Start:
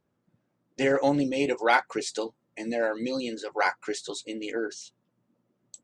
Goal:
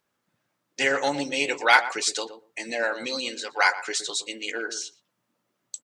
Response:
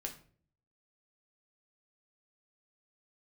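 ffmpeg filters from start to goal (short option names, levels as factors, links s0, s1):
-filter_complex "[0:a]tiltshelf=f=680:g=-10,asplit=2[s0][s1];[s1]adelay=118,lowpass=f=860:p=1,volume=0.335,asplit=2[s2][s3];[s3]adelay=118,lowpass=f=860:p=1,volume=0.15[s4];[s2][s4]amix=inputs=2:normalize=0[s5];[s0][s5]amix=inputs=2:normalize=0"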